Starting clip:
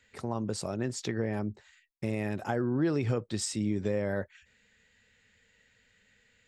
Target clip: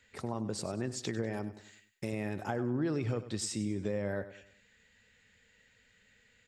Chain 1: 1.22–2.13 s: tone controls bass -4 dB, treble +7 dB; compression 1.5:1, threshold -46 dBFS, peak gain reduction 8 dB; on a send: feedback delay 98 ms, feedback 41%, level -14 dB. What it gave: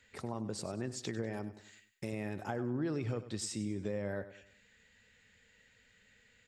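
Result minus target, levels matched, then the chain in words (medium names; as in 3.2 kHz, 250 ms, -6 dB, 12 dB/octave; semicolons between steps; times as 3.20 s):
compression: peak gain reduction +3 dB
1.22–2.13 s: tone controls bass -4 dB, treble +7 dB; compression 1.5:1, threshold -37 dBFS, peak gain reduction 5 dB; on a send: feedback delay 98 ms, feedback 41%, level -14 dB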